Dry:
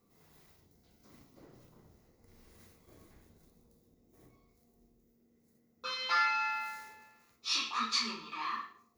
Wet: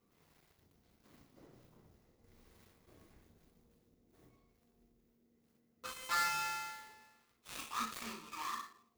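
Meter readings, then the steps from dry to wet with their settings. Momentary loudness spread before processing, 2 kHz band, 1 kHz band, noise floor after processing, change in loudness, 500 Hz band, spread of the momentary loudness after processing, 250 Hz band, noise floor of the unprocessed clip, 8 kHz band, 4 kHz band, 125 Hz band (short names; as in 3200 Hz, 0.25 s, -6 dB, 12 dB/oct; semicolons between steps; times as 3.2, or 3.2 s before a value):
14 LU, -6.0 dB, -5.0 dB, -75 dBFS, -6.0 dB, -3.5 dB, 16 LU, -4.5 dB, -71 dBFS, -1.5 dB, -10.5 dB, -1.5 dB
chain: switching dead time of 0.12 ms; gain -3.5 dB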